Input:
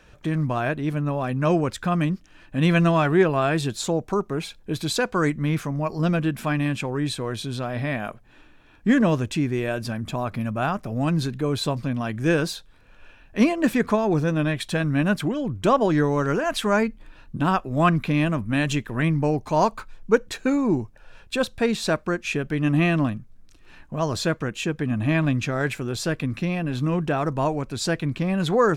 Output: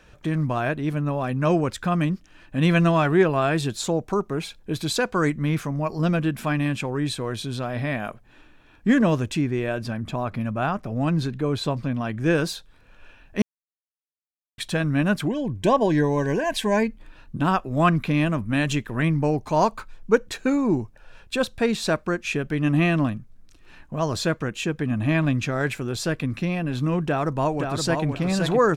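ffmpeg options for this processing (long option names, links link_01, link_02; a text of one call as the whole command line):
ffmpeg -i in.wav -filter_complex "[0:a]asettb=1/sr,asplit=3[link_01][link_02][link_03];[link_01]atrim=end=9.414[link_04];[link_02]atrim=start=9.41:end=12.35,asetpts=PTS-STARTPTS,afade=type=in:duration=0.004:curve=qsin,afade=type=out:start_time=2.936:duration=0.004:curve=qsin,highshelf=frequency=6100:gain=-9[link_05];[link_03]atrim=start=12.346[link_06];[link_04][link_05]acrossfade=duration=0.004:curve1=hsin:curve2=qsin[link_07];[link_07][link_06]acrossfade=duration=0.004:curve1=qsin:curve2=hsin,asettb=1/sr,asplit=3[link_08][link_09][link_10];[link_08]atrim=end=15.274[link_11];[link_09]atrim=start=15.27:end=16.88,asetpts=PTS-STARTPTS,afade=type=in:duration=0.004:curve=qsin,afade=type=out:start_time=1.606:duration=0.004:curve=qsin,asuperstop=centerf=1300:order=12:qfactor=3.6[link_12];[link_10]atrim=start=16.876[link_13];[link_11][link_12]acrossfade=duration=0.004:curve1=hsin:curve2=qsin[link_14];[link_14][link_13]acrossfade=duration=0.004:curve1=qsin:curve2=hsin,asplit=2[link_15][link_16];[link_16]afade=type=in:start_time=27.05:duration=0.01,afade=type=out:start_time=28.06:duration=0.01,aecho=0:1:520|1040|1560:0.562341|0.112468|0.0224937[link_17];[link_15][link_17]amix=inputs=2:normalize=0,asplit=3[link_18][link_19][link_20];[link_18]atrim=end=13.42,asetpts=PTS-STARTPTS,afade=type=out:start_time=13.416:duration=0.004:curve=hsin[link_21];[link_19]atrim=start=13.42:end=14.58,asetpts=PTS-STARTPTS,volume=0[link_22];[link_20]atrim=start=14.58,asetpts=PTS-STARTPTS,afade=type=in:duration=0.004:curve=hsin[link_23];[link_21][link_22][link_23]concat=n=3:v=0:a=1" out.wav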